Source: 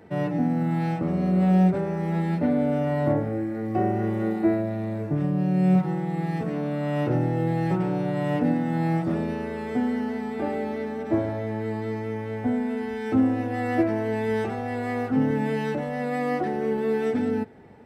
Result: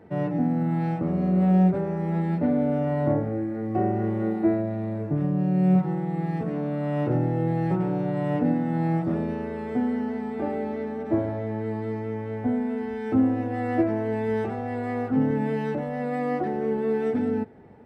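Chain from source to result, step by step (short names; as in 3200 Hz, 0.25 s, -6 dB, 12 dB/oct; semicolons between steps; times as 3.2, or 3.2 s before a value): high shelf 2300 Hz -10.5 dB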